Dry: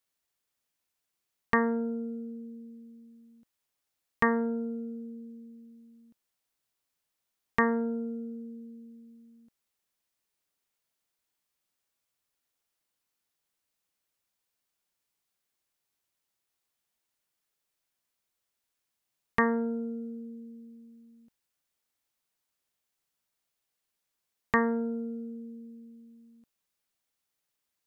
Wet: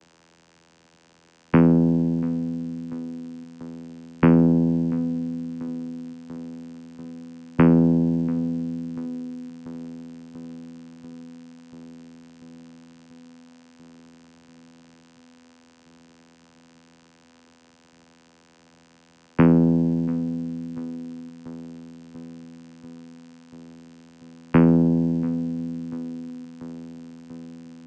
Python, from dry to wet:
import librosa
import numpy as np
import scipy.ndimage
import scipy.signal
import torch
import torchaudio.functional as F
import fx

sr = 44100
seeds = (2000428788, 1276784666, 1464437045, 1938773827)

p1 = fx.tilt_eq(x, sr, slope=-3.0)
p2 = fx.dmg_noise_colour(p1, sr, seeds[0], colour='white', level_db=-51.0)
p3 = fx.vocoder(p2, sr, bands=8, carrier='saw', carrier_hz=83.2)
p4 = p3 + fx.echo_filtered(p3, sr, ms=689, feedback_pct=77, hz=1600.0, wet_db=-19.0, dry=0)
y = p4 * librosa.db_to_amplitude(8.5)